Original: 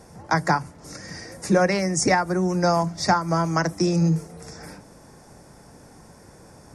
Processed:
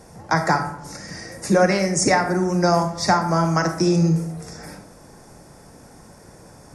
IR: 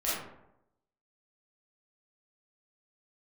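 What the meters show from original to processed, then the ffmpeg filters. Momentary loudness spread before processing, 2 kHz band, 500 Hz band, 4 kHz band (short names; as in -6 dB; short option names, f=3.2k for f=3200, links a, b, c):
19 LU, +2.5 dB, +3.0 dB, +2.5 dB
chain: -filter_complex "[0:a]asplit=2[a][b];[1:a]atrim=start_sample=2205,highshelf=f=7.2k:g=7.5[c];[b][c]afir=irnorm=-1:irlink=0,volume=-12.5dB[d];[a][d]amix=inputs=2:normalize=0"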